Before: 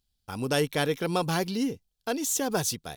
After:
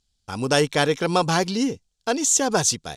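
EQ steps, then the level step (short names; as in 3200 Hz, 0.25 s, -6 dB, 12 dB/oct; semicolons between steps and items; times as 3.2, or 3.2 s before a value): dynamic EQ 990 Hz, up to +4 dB, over -38 dBFS, Q 0.77; synth low-pass 7300 Hz, resonance Q 2; +4.5 dB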